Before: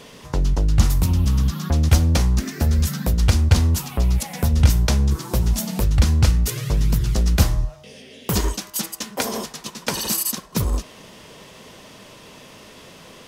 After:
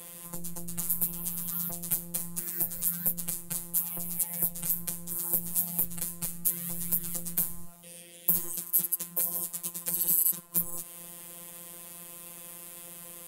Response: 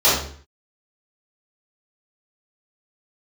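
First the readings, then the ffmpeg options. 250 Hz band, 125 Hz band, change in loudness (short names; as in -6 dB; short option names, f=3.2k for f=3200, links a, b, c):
-17.5 dB, -26.0 dB, -8.5 dB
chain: -filter_complex "[0:a]acrossover=split=92|430|4900[a][b][c][d];[a]acompressor=threshold=-26dB:ratio=4[e];[b]acompressor=threshold=-37dB:ratio=4[f];[c]acompressor=threshold=-41dB:ratio=4[g];[d]acompressor=threshold=-39dB:ratio=4[h];[e][f][g][h]amix=inputs=4:normalize=0,afftfilt=real='hypot(re,im)*cos(PI*b)':imag='0':win_size=1024:overlap=0.75,aexciter=amount=11.2:drive=6.9:freq=8.1k,volume=-5.5dB"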